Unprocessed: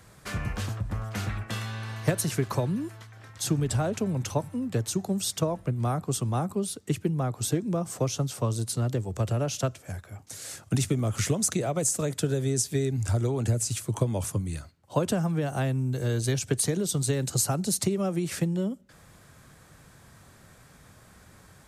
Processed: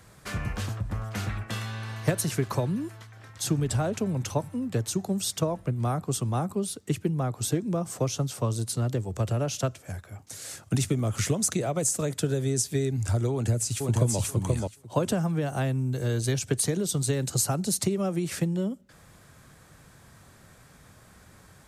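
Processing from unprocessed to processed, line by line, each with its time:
13.32–14.19 s: echo throw 480 ms, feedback 15%, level -1.5 dB

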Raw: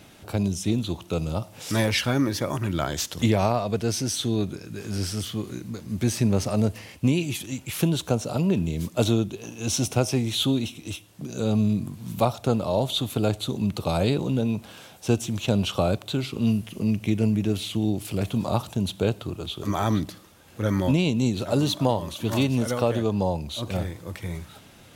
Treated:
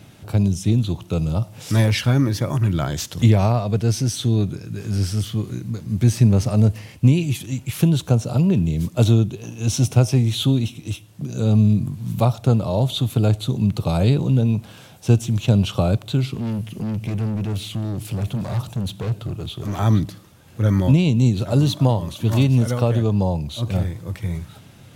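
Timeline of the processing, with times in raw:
16.34–19.79 s: overload inside the chain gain 27.5 dB
whole clip: peaking EQ 120 Hz +11 dB 1.3 oct

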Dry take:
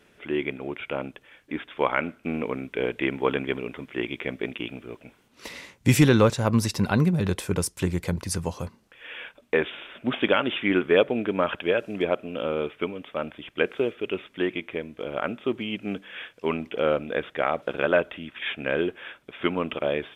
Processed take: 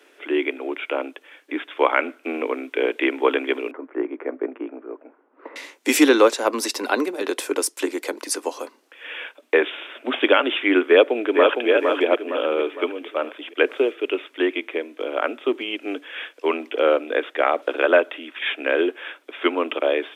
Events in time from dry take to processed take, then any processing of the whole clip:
3.71–5.56 s: low-pass 1.4 kHz 24 dB/octave
10.87–11.69 s: echo throw 460 ms, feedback 45%, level -4 dB
whole clip: steep high-pass 270 Hz 72 dB/octave; trim +5.5 dB

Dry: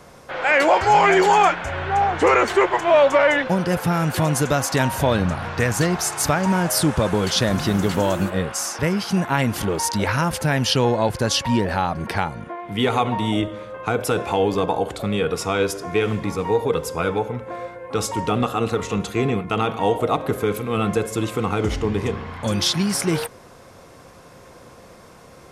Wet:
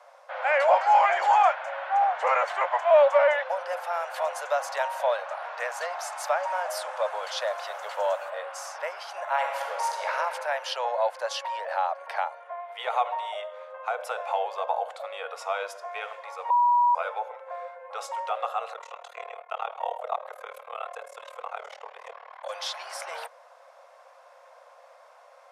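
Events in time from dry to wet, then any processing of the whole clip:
9.22–10.14 s: reverb throw, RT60 2.4 s, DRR 1 dB
16.50–16.95 s: bleep 967 Hz -13 dBFS
18.73–22.50 s: AM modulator 38 Hz, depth 95%
whole clip: steep high-pass 560 Hz 72 dB/octave; tilt EQ -4 dB/octave; trim -4.5 dB

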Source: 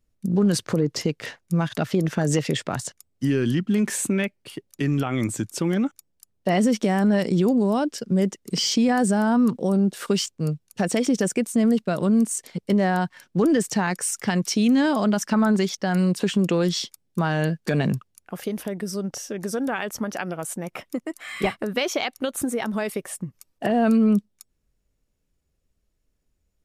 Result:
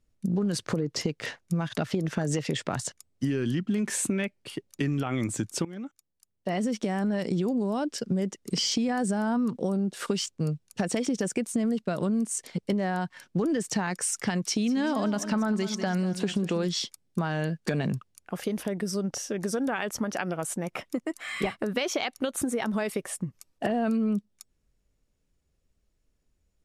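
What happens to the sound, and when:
5.65–7.84 s: fade in, from -18.5 dB
14.44–16.68 s: feedback delay 194 ms, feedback 41%, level -13.5 dB
whole clip: low-pass 11 kHz 12 dB/octave; compression, threshold -24 dBFS

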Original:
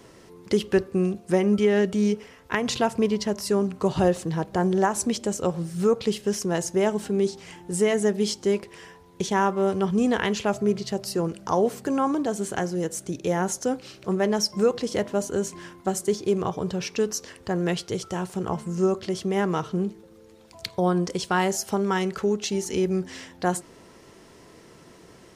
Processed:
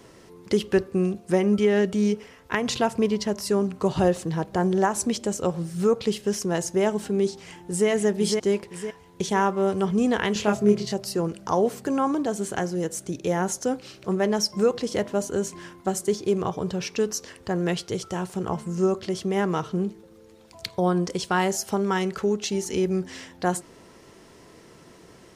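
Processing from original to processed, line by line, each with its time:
7.44–7.88 s: echo throw 510 ms, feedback 45%, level -4 dB
10.33–10.94 s: doubling 24 ms -2.5 dB

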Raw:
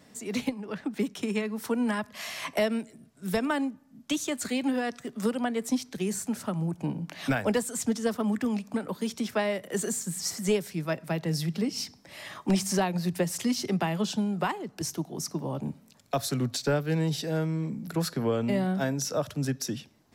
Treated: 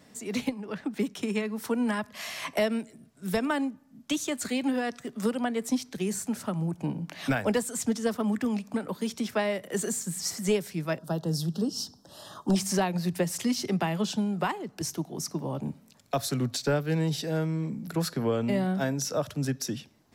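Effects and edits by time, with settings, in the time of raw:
10.98–12.56 s: Butterworth band-stop 2.2 kHz, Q 1.2

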